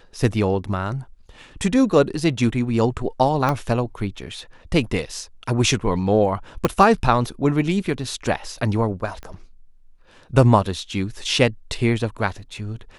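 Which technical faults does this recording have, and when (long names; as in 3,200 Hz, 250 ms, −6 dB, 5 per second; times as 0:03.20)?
0:03.49: click −9 dBFS
0:06.65: click −5 dBFS
0:09.23: click −22 dBFS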